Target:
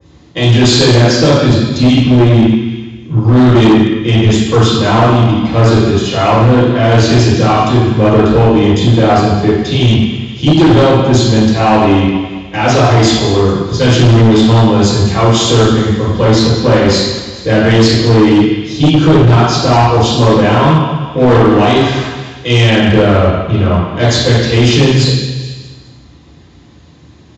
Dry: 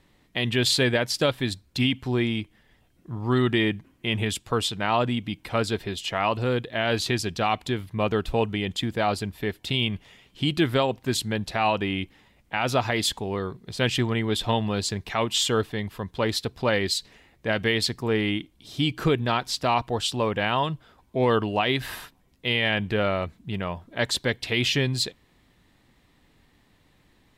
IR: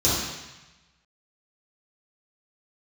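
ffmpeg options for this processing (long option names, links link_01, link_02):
-filter_complex "[0:a]asplit=2[link_01][link_02];[link_02]asoftclip=type=tanh:threshold=-24dB,volume=-8dB[link_03];[link_01][link_03]amix=inputs=2:normalize=0,lowshelf=frequency=62:gain=-6.5,aecho=1:1:209|418|627|836:0.188|0.0735|0.0287|0.0112[link_04];[1:a]atrim=start_sample=2205[link_05];[link_04][link_05]afir=irnorm=-1:irlink=0,aresample=16000,asoftclip=type=hard:threshold=-1dB,aresample=44100,adynamicequalizer=threshold=0.0631:dfrequency=2300:dqfactor=0.7:tfrequency=2300:tqfactor=0.7:attack=5:release=100:ratio=0.375:range=2.5:mode=cutabove:tftype=highshelf,volume=-2.5dB"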